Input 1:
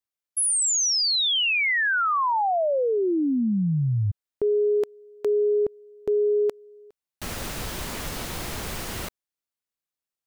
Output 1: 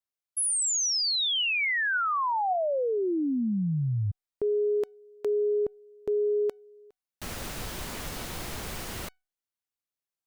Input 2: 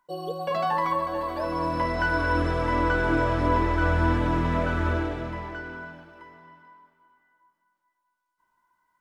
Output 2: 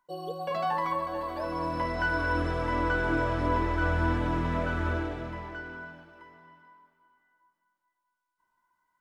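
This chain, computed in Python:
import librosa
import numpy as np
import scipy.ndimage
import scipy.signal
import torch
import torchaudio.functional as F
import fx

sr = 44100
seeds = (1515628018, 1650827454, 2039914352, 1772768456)

y = fx.comb_fb(x, sr, f0_hz=750.0, decay_s=0.28, harmonics='all', damping=0.1, mix_pct=40)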